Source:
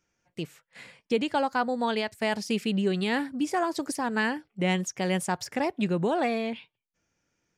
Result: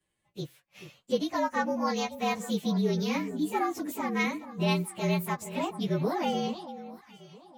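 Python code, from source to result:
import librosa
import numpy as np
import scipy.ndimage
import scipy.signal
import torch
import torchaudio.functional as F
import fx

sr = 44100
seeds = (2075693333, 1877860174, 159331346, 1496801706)

y = fx.partial_stretch(x, sr, pct=112)
y = fx.echo_alternate(y, sr, ms=433, hz=1100.0, feedback_pct=53, wet_db=-12)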